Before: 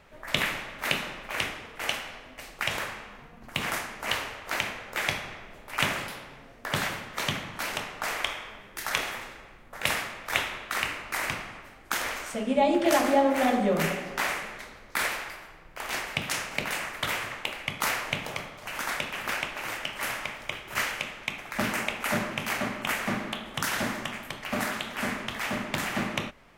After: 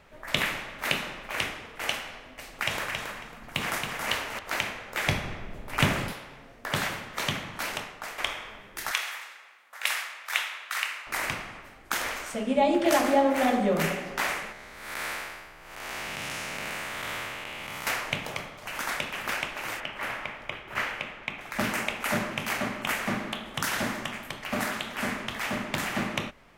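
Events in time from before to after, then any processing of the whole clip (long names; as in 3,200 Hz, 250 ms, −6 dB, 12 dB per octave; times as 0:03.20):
0:02.26–0:04.39: repeating echo 274 ms, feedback 18%, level −5 dB
0:05.07–0:06.13: low-shelf EQ 360 Hz +12 dB
0:07.66–0:08.18: fade out, to −10.5 dB
0:08.91–0:11.07: high-pass filter 1,100 Hz
0:14.52–0:17.87: spectrum smeared in time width 272 ms
0:19.80–0:21.41: bass and treble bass −1 dB, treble −13 dB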